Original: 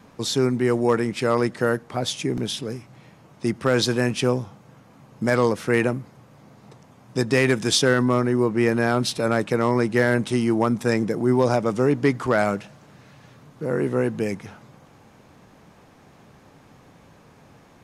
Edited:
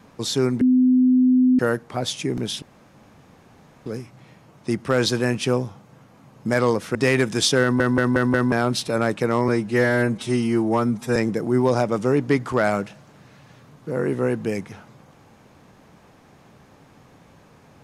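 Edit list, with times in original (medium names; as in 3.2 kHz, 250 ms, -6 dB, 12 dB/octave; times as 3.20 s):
0.61–1.59 s: bleep 254 Hz -12.5 dBFS
2.62 s: insert room tone 1.24 s
5.71–7.25 s: delete
7.92 s: stutter in place 0.18 s, 5 plays
9.78–10.90 s: stretch 1.5×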